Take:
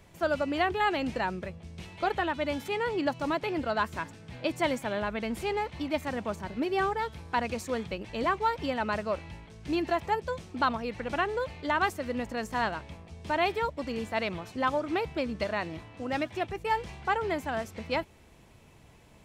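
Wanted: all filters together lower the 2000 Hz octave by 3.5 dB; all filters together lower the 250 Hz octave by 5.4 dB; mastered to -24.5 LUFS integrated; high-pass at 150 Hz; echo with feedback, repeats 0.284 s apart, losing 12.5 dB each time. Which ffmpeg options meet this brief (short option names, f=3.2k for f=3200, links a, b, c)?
-af "highpass=150,equalizer=f=250:t=o:g=-6.5,equalizer=f=2k:t=o:g=-4.5,aecho=1:1:284|568|852:0.237|0.0569|0.0137,volume=8.5dB"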